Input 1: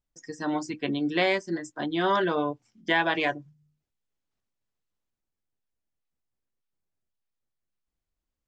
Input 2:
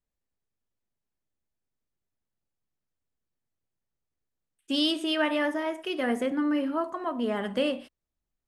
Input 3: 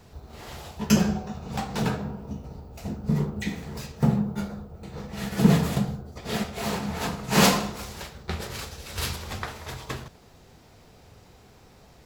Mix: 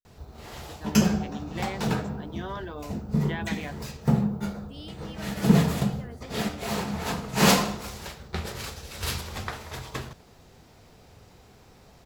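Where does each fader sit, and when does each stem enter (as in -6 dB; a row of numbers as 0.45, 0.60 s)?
-12.5, -19.0, -0.5 dB; 0.40, 0.00, 0.05 s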